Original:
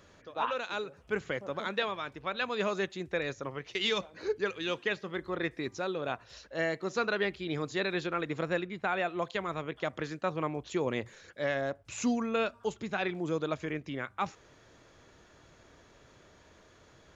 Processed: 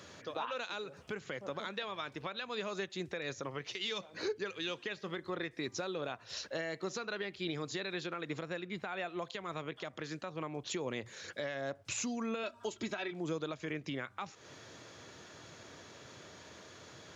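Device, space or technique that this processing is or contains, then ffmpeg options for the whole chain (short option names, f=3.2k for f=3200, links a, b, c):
broadcast voice chain: -filter_complex "[0:a]asettb=1/sr,asplit=3[a][b][c];[a]atrim=end=12.434[d];[b]atrim=start=12.43:end=13.12,asetpts=PTS-STARTPTS,afade=t=in:d=0.004:c=qsin,afade=t=out:st=0.686:d=0.004:c=qsin,aecho=1:1:3.1:0.69,atrim=end_sample=30429[e];[c]atrim=start=13.116[f];[d][e]acrossfade=d=0.004:c1=hsin:c2=qsin[g];[g][f]acrossfade=d=0.004:c1=qsin:c2=hsin,highpass=f=89:w=0.5412,highpass=f=89:w=1.3066,deesser=0.75,acompressor=threshold=-40dB:ratio=3,equalizer=f=5k:t=o:w=1.7:g=5.5,alimiter=level_in=8dB:limit=-24dB:level=0:latency=1:release=279,volume=-8dB,volume=5dB"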